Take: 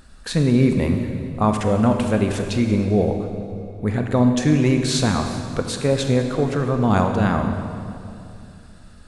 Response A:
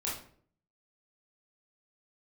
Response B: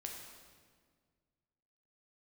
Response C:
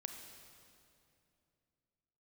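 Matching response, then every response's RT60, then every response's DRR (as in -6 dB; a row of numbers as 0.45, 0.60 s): C; 0.55, 1.8, 2.7 s; -6.5, 0.0, 4.5 dB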